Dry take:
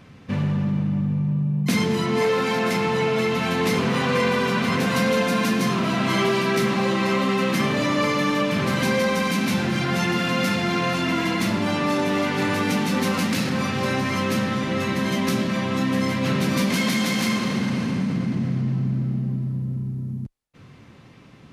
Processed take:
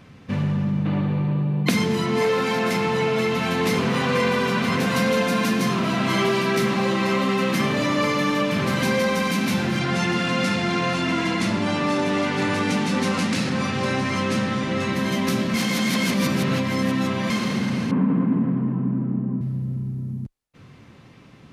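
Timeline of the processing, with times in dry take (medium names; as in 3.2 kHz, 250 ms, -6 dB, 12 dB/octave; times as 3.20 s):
0.85–1.69 s: time-frequency box 290–4700 Hz +11 dB
9.79–14.93 s: low-pass 10 kHz 24 dB/octave
15.54–17.30 s: reverse
17.91–19.41 s: cabinet simulation 170–2200 Hz, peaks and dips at 180 Hz +5 dB, 270 Hz +10 dB, 440 Hz +6 dB, 1 kHz +9 dB, 2.1 kHz -6 dB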